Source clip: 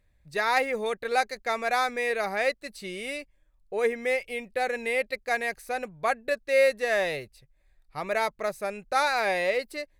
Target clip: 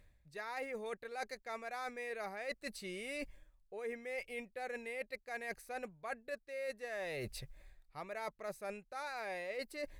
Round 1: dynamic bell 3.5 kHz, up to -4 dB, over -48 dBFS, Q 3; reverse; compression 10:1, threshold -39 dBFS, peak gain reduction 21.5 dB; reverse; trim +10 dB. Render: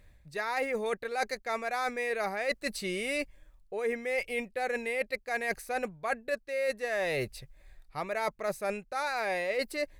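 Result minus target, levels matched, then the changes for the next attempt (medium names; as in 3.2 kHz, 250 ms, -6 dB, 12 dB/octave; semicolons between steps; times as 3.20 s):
compression: peak gain reduction -11 dB
change: compression 10:1, threshold -51 dBFS, peak gain reduction 32 dB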